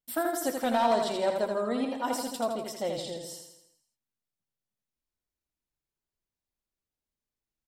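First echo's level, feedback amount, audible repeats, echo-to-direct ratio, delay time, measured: −5.0 dB, 52%, 6, −3.5 dB, 82 ms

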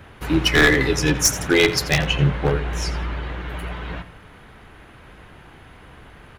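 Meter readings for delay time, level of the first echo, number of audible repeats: 85 ms, −15.0 dB, 2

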